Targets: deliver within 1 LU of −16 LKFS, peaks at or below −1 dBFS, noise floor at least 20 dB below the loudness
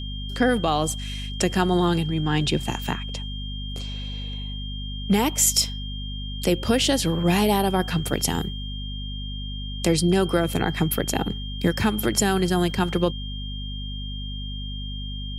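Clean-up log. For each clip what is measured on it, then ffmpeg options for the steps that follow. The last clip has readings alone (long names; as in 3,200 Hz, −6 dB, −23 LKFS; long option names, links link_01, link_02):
mains hum 50 Hz; hum harmonics up to 250 Hz; level of the hum −30 dBFS; interfering tone 3,200 Hz; level of the tone −36 dBFS; integrated loudness −24.5 LKFS; sample peak −5.5 dBFS; target loudness −16.0 LKFS
→ -af "bandreject=frequency=50:width_type=h:width=6,bandreject=frequency=100:width_type=h:width=6,bandreject=frequency=150:width_type=h:width=6,bandreject=frequency=200:width_type=h:width=6,bandreject=frequency=250:width_type=h:width=6"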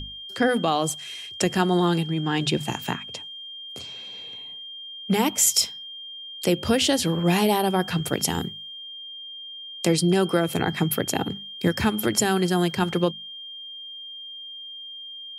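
mains hum none found; interfering tone 3,200 Hz; level of the tone −36 dBFS
→ -af "bandreject=frequency=3200:width=30"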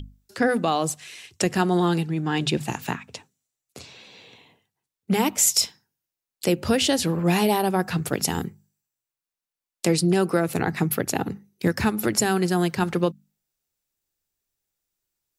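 interfering tone none found; integrated loudness −23.5 LKFS; sample peak −6.0 dBFS; target loudness −16.0 LKFS
→ -af "volume=7.5dB,alimiter=limit=-1dB:level=0:latency=1"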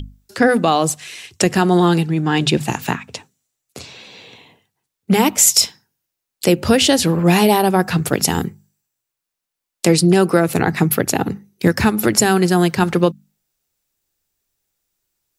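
integrated loudness −16.0 LKFS; sample peak −1.0 dBFS; background noise floor −82 dBFS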